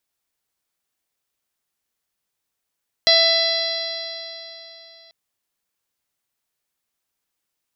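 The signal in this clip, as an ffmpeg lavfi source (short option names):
-f lavfi -i "aevalsrc='0.126*pow(10,-3*t/3.37)*sin(2*PI*660.49*t)+0.0178*pow(10,-3*t/3.37)*sin(2*PI*1323.95*t)+0.0891*pow(10,-3*t/3.37)*sin(2*PI*1993.32*t)+0.0251*pow(10,-3*t/3.37)*sin(2*PI*2671.49*t)+0.1*pow(10,-3*t/3.37)*sin(2*PI*3361.31*t)+0.2*pow(10,-3*t/3.37)*sin(2*PI*4065.51*t)+0.126*pow(10,-3*t/3.37)*sin(2*PI*4786.77*t)+0.0794*pow(10,-3*t/3.37)*sin(2*PI*5527.63*t)':d=2.04:s=44100"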